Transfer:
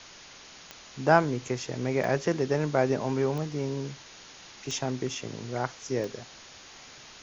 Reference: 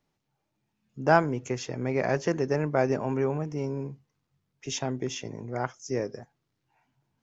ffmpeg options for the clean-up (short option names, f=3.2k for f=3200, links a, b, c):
-af "adeclick=t=4,afwtdn=0.0063,asetnsamples=n=441:p=0,asendcmd='6.54 volume volume -8.5dB',volume=0dB"